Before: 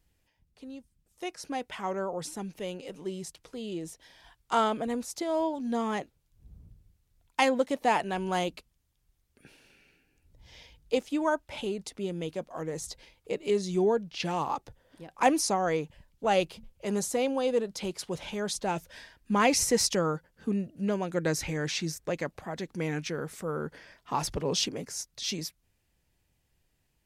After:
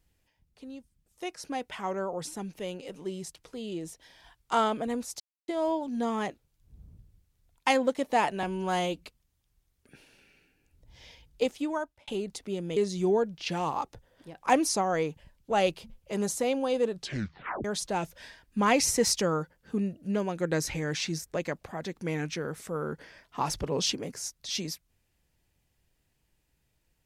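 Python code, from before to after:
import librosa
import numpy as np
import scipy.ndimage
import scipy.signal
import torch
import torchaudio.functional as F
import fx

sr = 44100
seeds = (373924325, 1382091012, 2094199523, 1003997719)

y = fx.edit(x, sr, fx.insert_silence(at_s=5.2, length_s=0.28),
    fx.stretch_span(start_s=8.15, length_s=0.41, factor=1.5),
    fx.fade_out_span(start_s=11.06, length_s=0.53),
    fx.cut(start_s=12.28, length_s=1.22),
    fx.tape_stop(start_s=17.64, length_s=0.74), tone=tone)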